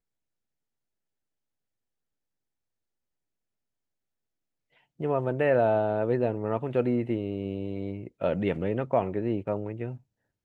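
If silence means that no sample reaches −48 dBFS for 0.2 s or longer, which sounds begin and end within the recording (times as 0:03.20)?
0:05.00–0:09.97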